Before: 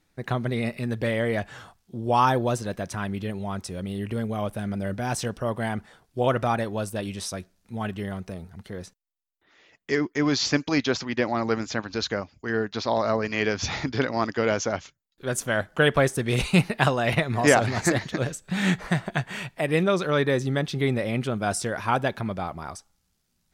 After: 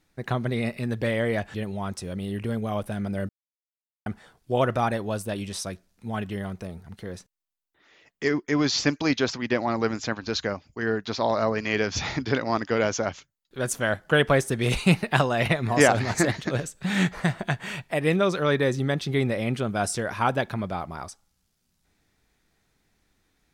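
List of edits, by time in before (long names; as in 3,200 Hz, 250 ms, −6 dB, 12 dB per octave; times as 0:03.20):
0:01.54–0:03.21: remove
0:04.96–0:05.73: silence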